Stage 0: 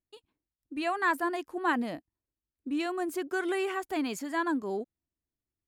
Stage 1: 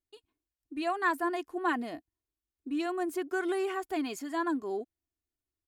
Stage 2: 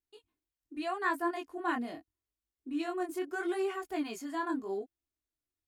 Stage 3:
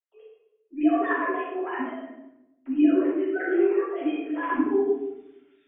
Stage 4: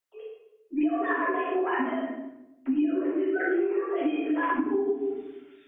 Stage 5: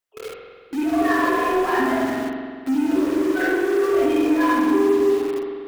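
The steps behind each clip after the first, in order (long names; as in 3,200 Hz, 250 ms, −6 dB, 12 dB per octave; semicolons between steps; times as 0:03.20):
comb filter 2.8 ms, depth 51%; level −3.5 dB
chorus effect 0.8 Hz, delay 17.5 ms, depth 7.6 ms
three sine waves on the formant tracks; reversed playback; upward compression, threshold −53 dBFS; reversed playback; convolution reverb RT60 0.90 s, pre-delay 3 ms, DRR −12 dB; level −5.5 dB
downward compressor 10 to 1, threshold −31 dBFS, peak gain reduction 17.5 dB; level +8 dB
in parallel at −5 dB: log-companded quantiser 2 bits; on the sum: spring reverb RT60 1.9 s, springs 45 ms, chirp 60 ms, DRR 1 dB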